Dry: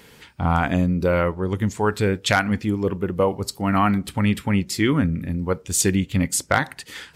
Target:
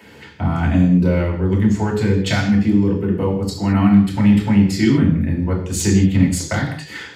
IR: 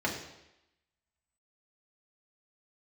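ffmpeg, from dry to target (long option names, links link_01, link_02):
-filter_complex "[0:a]acrossover=split=250|3000[link_01][link_02][link_03];[link_02]acompressor=threshold=-31dB:ratio=3[link_04];[link_01][link_04][link_03]amix=inputs=3:normalize=0,asplit=2[link_05][link_06];[link_06]asoftclip=type=hard:threshold=-17dB,volume=-5.5dB[link_07];[link_05][link_07]amix=inputs=2:normalize=0[link_08];[1:a]atrim=start_sample=2205,afade=type=out:start_time=0.28:duration=0.01,atrim=end_sample=12789[link_09];[link_08][link_09]afir=irnorm=-1:irlink=0,volume=-6dB"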